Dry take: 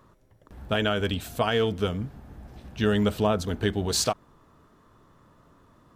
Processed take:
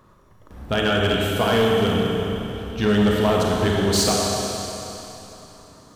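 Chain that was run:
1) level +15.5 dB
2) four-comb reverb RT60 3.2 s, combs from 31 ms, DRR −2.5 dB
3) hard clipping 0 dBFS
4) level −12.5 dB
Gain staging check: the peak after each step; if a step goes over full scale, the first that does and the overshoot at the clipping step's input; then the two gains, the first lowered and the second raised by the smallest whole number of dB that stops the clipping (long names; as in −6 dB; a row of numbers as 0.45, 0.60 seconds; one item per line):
+5.5, +7.5, 0.0, −12.5 dBFS
step 1, 7.5 dB
step 1 +7.5 dB, step 4 −4.5 dB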